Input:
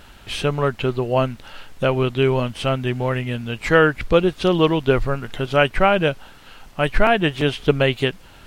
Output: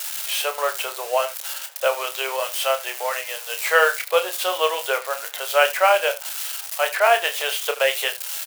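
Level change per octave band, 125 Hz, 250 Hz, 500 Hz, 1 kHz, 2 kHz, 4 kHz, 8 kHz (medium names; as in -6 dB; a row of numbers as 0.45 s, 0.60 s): under -40 dB, under -25 dB, -3.0 dB, +1.0 dB, +1.0 dB, +2.5 dB, no reading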